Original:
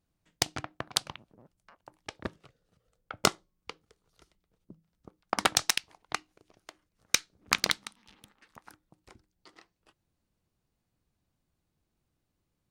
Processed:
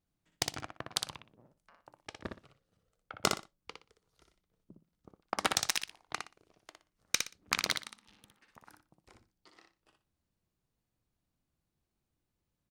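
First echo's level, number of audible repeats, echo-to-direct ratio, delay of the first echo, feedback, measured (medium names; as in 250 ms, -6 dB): -5.0 dB, 3, -5.0 dB, 60 ms, 22%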